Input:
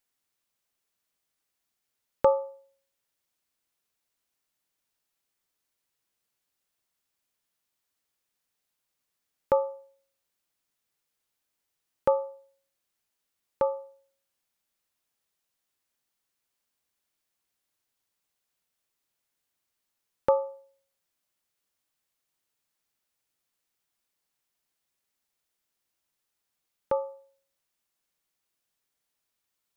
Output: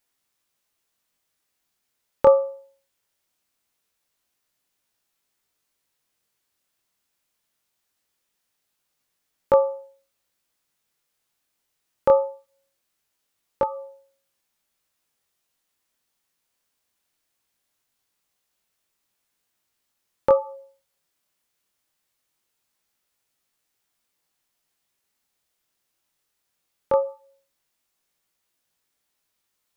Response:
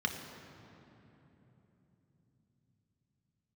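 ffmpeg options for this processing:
-af "flanger=delay=18:depth=7.7:speed=0.21,volume=8.5dB"

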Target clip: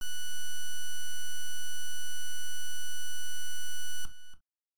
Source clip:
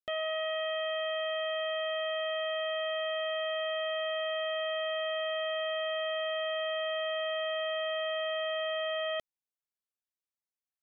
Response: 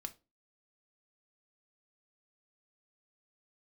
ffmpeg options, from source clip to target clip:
-filter_complex "[0:a]asetrate=103194,aresample=44100,lowshelf=frequency=310:gain=-8,acrossover=split=440|1400[link_01][link_02][link_03];[link_03]aeval=exprs='abs(val(0))':channel_layout=same[link_04];[link_01][link_02][link_04]amix=inputs=3:normalize=0,acrossover=split=2800[link_05][link_06];[link_06]acompressor=threshold=-48dB:ratio=4:attack=1:release=60[link_07];[link_05][link_07]amix=inputs=2:normalize=0,acrusher=bits=6:dc=4:mix=0:aa=0.000001,atempo=0.97,areverse,acompressor=mode=upward:threshold=-54dB:ratio=2.5,areverse,asplit=2[link_08][link_09];[link_09]adelay=285.7,volume=-13dB,highshelf=frequency=4000:gain=-6.43[link_10];[link_08][link_10]amix=inputs=2:normalize=0[link_11];[1:a]atrim=start_sample=2205,atrim=end_sample=3087[link_12];[link_11][link_12]afir=irnorm=-1:irlink=0,volume=6dB"

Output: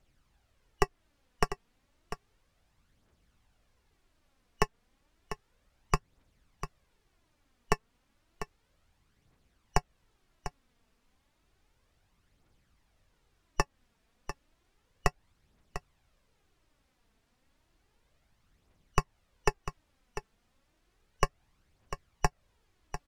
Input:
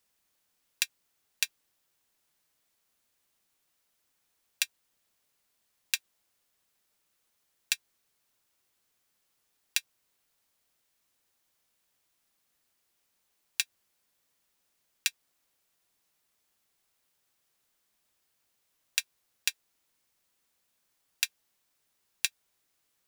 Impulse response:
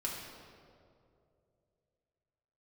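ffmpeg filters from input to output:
-filter_complex "[0:a]afftfilt=real='real(if(lt(b,272),68*(eq(floor(b/68),0)*2+eq(floor(b/68),1)*3+eq(floor(b/68),2)*0+eq(floor(b/68),3)*1)+mod(b,68),b),0)':imag='imag(if(lt(b,272),68*(eq(floor(b/68),0)*2+eq(floor(b/68),1)*3+eq(floor(b/68),2)*0+eq(floor(b/68),3)*1)+mod(b,68),b),0)':win_size=2048:overlap=0.75,acrossover=split=240|1900[link_01][link_02][link_03];[link_02]acompressor=threshold=-32dB:ratio=4[link_04];[link_03]acompressor=threshold=-34dB:ratio=4[link_05];[link_01][link_04][link_05]amix=inputs=3:normalize=0,aphaser=in_gain=1:out_gain=1:delay=4.6:decay=0.46:speed=0.32:type=triangular,aemphasis=mode=reproduction:type=riaa,aecho=1:1:697:0.266,volume=6.5dB"

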